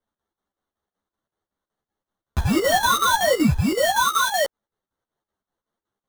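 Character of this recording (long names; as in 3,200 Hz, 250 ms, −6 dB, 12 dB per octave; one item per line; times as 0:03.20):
aliases and images of a low sample rate 2,500 Hz, jitter 0%
chopped level 5.3 Hz, depth 65%, duty 70%
a shimmering, thickened sound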